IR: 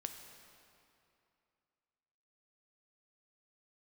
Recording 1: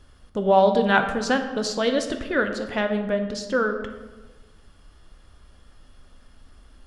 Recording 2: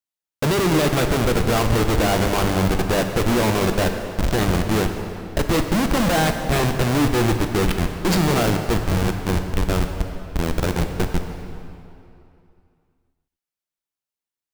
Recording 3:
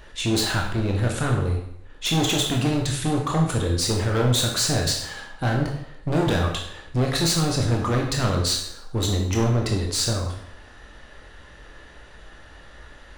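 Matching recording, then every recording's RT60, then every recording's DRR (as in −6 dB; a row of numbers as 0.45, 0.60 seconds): 2; 1.3, 2.7, 0.75 seconds; 5.5, 5.0, 0.0 decibels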